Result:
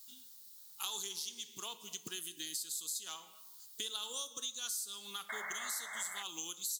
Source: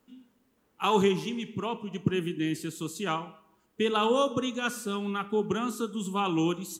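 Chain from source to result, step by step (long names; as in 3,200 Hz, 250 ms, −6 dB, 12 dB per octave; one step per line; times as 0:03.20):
high shelf with overshoot 3,200 Hz +8.5 dB, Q 3
log-companded quantiser 8 bits
sound drawn into the spectrogram noise, 0:05.29–0:06.23, 560–2,200 Hz −29 dBFS
first difference
downward compressor 4 to 1, threshold −52 dBFS, peak gain reduction 20.5 dB
level +11 dB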